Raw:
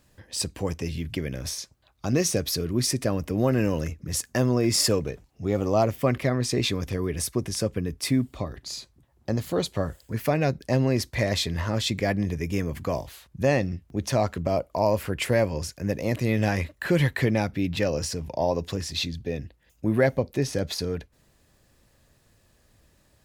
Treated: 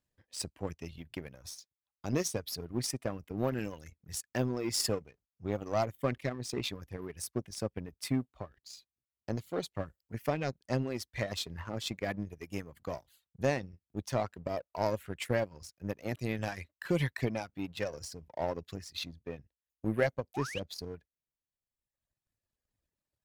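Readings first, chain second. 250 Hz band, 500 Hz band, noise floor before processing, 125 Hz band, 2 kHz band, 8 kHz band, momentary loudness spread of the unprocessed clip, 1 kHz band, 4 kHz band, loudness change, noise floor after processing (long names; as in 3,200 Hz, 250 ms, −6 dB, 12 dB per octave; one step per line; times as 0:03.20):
−10.5 dB, −9.5 dB, −63 dBFS, −11.5 dB, −9.0 dB, −10.5 dB, 9 LU, −8.0 dB, −10.0 dB, −10.0 dB, below −85 dBFS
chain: sound drawn into the spectrogram rise, 0:20.34–0:20.60, 680–3,300 Hz −31 dBFS
reverb reduction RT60 1.8 s
power curve on the samples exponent 1.4
level −4.5 dB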